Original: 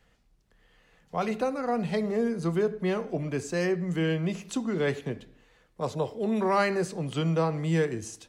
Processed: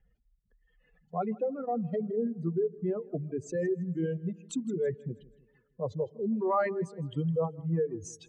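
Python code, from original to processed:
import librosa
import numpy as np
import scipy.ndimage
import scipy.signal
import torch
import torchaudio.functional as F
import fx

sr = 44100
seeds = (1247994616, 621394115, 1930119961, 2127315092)

y = fx.spec_expand(x, sr, power=2.2)
y = fx.echo_feedback(y, sr, ms=161, feedback_pct=48, wet_db=-12.0)
y = fx.dereverb_blind(y, sr, rt60_s=1.9)
y = F.gain(torch.from_numpy(y), -2.0).numpy()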